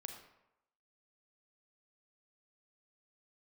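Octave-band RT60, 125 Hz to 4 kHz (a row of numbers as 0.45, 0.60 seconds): 0.70, 0.75, 0.85, 0.90, 0.75, 0.55 seconds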